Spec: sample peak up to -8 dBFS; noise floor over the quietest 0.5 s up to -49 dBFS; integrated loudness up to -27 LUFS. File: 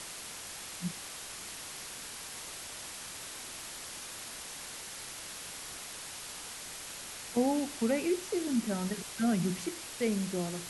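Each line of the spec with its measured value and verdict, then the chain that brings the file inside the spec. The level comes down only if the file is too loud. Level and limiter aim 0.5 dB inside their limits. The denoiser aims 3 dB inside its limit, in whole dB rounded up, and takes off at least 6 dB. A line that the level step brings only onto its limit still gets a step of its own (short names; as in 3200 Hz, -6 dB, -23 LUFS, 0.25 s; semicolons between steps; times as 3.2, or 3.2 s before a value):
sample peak -18.0 dBFS: OK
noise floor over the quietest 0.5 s -44 dBFS: fail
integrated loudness -36.0 LUFS: OK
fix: denoiser 8 dB, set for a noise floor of -44 dBFS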